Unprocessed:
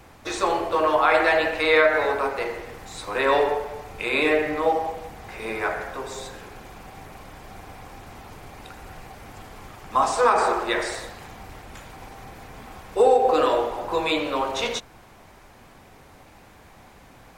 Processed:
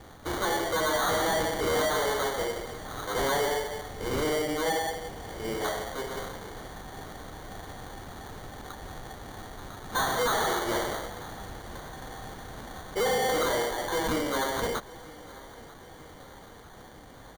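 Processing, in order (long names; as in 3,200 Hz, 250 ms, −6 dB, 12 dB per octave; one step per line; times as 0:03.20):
0:03.93–0:06.10: parametric band 1,800 Hz −7 dB 1.1 octaves
decimation without filtering 17×
soft clipping −24 dBFS, distortion −7 dB
repeating echo 944 ms, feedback 59%, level −21 dB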